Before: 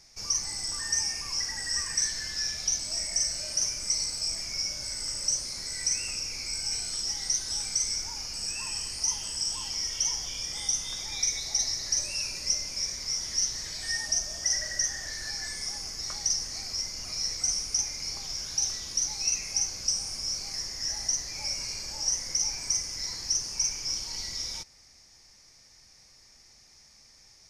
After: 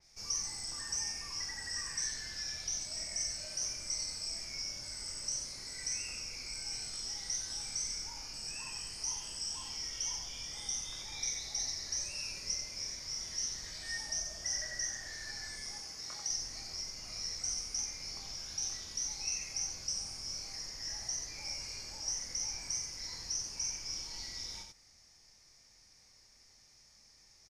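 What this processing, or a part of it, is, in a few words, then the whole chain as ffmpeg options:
slapback doubling: -filter_complex "[0:a]asettb=1/sr,asplit=3[link_01][link_02][link_03];[link_01]atrim=end=15.774[link_04];[link_02]atrim=start=15.77:end=16.3,asetpts=PTS-STARTPTS,afade=type=in:duration=0.004:curve=qsin,afade=type=out:start_time=0.526:duration=0.004:curve=qsin,highpass=frequency=150:poles=1[link_05];[link_03]atrim=start=16.296[link_06];[link_04][link_05]acrossfade=duration=0.004:curve1=hsin:curve2=qsin[link_07];[link_07][link_06]acrossfade=duration=0.004:curve1=qsin:curve2=hsin,asplit=3[link_08][link_09][link_10];[link_09]adelay=24,volume=-6dB[link_11];[link_10]adelay=91,volume=-5.5dB[link_12];[link_08][link_11][link_12]amix=inputs=3:normalize=0,adynamicequalizer=threshold=0.0126:dfrequency=4800:dqfactor=0.7:tfrequency=4800:tqfactor=0.7:attack=5:release=100:ratio=0.375:range=2:mode=cutabove:tftype=highshelf,volume=-8dB"

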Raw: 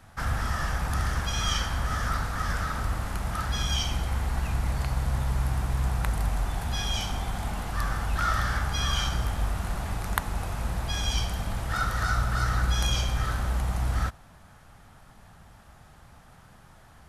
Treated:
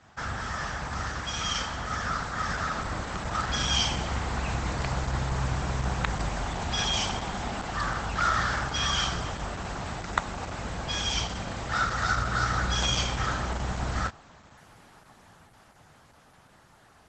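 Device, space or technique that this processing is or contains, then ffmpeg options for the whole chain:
video call: -af "highpass=frequency=180:poles=1,dynaudnorm=framelen=270:gausssize=21:maxgain=6.5dB" -ar 48000 -c:a libopus -b:a 12k

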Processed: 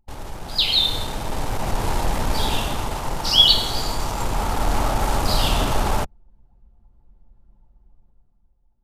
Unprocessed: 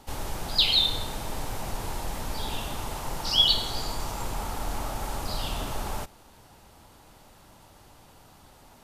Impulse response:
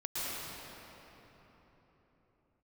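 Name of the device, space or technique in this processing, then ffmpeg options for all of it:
voice memo with heavy noise removal: -af "anlmdn=1.58,dynaudnorm=framelen=100:gausssize=17:maxgain=12dB"

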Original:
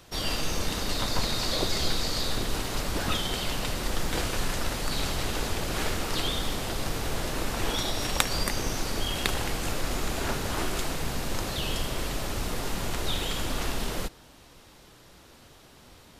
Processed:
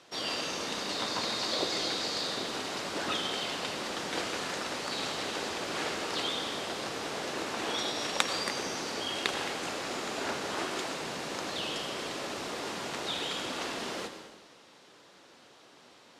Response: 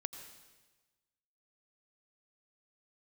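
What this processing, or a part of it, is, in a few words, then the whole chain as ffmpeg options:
supermarket ceiling speaker: -filter_complex "[0:a]highpass=270,lowpass=6800[link_01];[1:a]atrim=start_sample=2205[link_02];[link_01][link_02]afir=irnorm=-1:irlink=0"

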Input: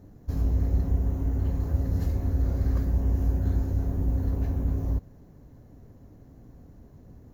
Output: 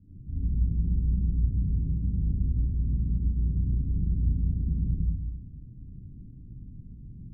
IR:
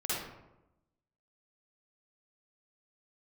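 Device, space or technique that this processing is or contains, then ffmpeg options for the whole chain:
club heard from the street: -filter_complex "[0:a]alimiter=level_in=1.5dB:limit=-24dB:level=0:latency=1:release=24,volume=-1.5dB,lowpass=frequency=230:width=0.5412,lowpass=frequency=230:width=1.3066[link_01];[1:a]atrim=start_sample=2205[link_02];[link_01][link_02]afir=irnorm=-1:irlink=0"

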